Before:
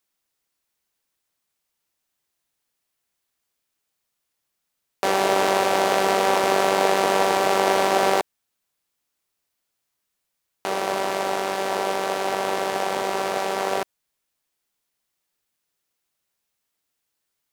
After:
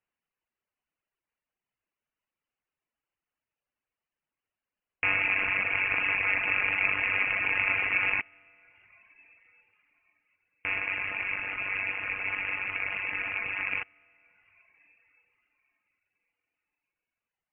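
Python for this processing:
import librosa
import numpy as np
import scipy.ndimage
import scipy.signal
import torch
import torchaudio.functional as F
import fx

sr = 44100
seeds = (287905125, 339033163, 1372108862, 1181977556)

y = fx.rev_plate(x, sr, seeds[0], rt60_s=4.8, hf_ratio=1.0, predelay_ms=0, drr_db=18.5)
y = fx.dereverb_blind(y, sr, rt60_s=1.2)
y = fx.freq_invert(y, sr, carrier_hz=3000)
y = F.gain(torch.from_numpy(y), -4.0).numpy()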